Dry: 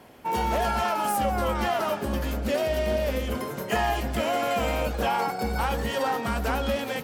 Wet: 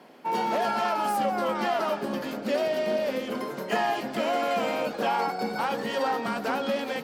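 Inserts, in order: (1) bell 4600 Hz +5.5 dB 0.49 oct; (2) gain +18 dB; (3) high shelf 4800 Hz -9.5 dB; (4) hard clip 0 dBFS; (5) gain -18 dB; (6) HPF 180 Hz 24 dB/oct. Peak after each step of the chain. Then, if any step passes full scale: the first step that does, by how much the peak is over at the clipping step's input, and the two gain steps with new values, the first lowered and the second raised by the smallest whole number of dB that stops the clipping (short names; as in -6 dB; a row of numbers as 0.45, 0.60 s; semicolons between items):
-14.5, +3.5, +3.0, 0.0, -18.0, -14.0 dBFS; step 2, 3.0 dB; step 2 +15 dB, step 5 -15 dB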